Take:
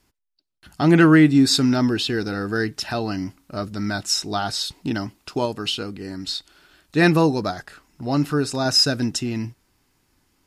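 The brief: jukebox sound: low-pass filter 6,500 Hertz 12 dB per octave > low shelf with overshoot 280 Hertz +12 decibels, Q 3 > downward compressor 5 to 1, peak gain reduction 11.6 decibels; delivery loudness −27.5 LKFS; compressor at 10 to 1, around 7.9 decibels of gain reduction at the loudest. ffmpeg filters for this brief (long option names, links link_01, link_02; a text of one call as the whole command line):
ffmpeg -i in.wav -af "acompressor=threshold=-17dB:ratio=10,lowpass=6500,lowshelf=frequency=280:width_type=q:width=3:gain=12,acompressor=threshold=-17dB:ratio=5,volume=-6dB" out.wav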